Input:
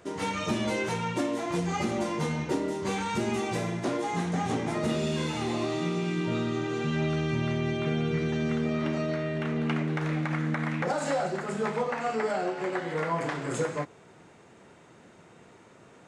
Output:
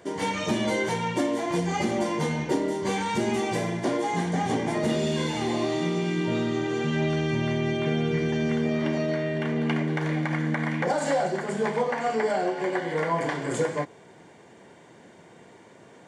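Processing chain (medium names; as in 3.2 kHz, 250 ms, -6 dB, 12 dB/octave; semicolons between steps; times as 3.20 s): comb of notches 1.3 kHz; trim +4 dB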